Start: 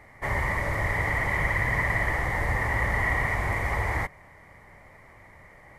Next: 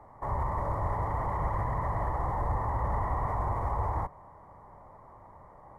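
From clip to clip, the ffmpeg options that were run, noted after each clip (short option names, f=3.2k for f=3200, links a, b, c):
-filter_complex "[0:a]highshelf=f=1.5k:t=q:w=3:g=-13.5,acrossover=split=130[a][b];[b]alimiter=limit=-24dB:level=0:latency=1:release=31[c];[a][c]amix=inputs=2:normalize=0,volume=-2dB"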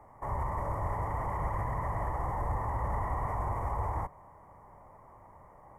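-af "aexciter=amount=1.4:drive=2.2:freq=2.1k,volume=-2.5dB"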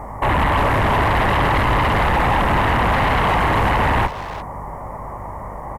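-filter_complex "[0:a]aeval=exprs='0.0841*sin(PI/2*3.55*val(0)/0.0841)':c=same,aeval=exprs='val(0)+0.00631*(sin(2*PI*50*n/s)+sin(2*PI*2*50*n/s)/2+sin(2*PI*3*50*n/s)/3+sin(2*PI*4*50*n/s)/4+sin(2*PI*5*50*n/s)/5)':c=same,asplit=2[a][b];[b]adelay=350,highpass=300,lowpass=3.4k,asoftclip=type=hard:threshold=-28.5dB,volume=-9dB[c];[a][c]amix=inputs=2:normalize=0,volume=8dB"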